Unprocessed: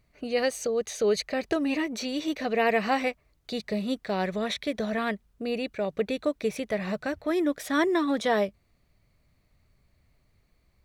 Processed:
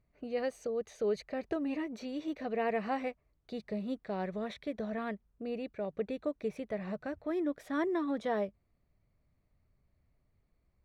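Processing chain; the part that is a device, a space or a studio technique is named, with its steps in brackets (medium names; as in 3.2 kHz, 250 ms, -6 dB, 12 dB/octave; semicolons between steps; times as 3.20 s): through cloth (treble shelf 2.4 kHz -14 dB); trim -7 dB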